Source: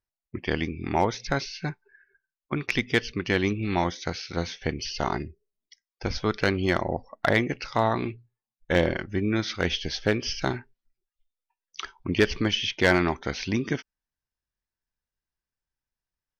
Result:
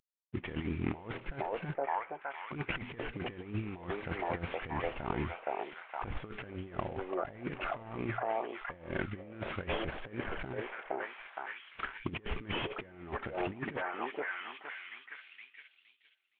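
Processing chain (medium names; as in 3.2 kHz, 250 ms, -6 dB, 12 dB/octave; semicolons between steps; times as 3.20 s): CVSD coder 16 kbps; repeats whose band climbs or falls 466 ms, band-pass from 620 Hz, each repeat 0.7 oct, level -2.5 dB; compressor with a negative ratio -32 dBFS, ratio -0.5; trim -4.5 dB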